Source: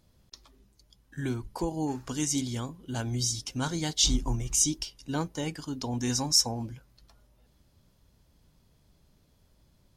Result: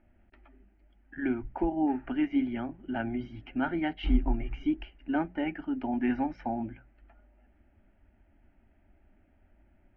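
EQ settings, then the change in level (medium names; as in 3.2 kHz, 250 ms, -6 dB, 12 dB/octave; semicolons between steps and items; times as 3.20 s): Chebyshev low-pass 3.3 kHz, order 6; hum notches 60/120/180 Hz; static phaser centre 710 Hz, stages 8; +5.5 dB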